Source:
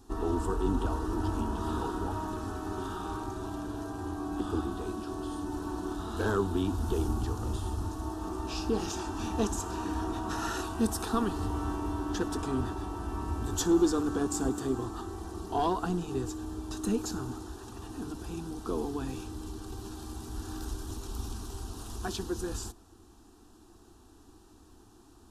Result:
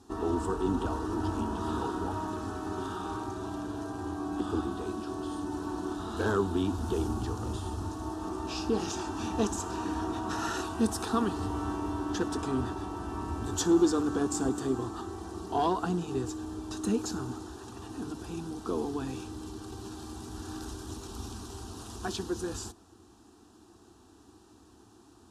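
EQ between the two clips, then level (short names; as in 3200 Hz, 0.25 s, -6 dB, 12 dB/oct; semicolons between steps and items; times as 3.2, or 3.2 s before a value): HPF 82 Hz 12 dB/oct; LPF 10000 Hz 12 dB/oct; +1.0 dB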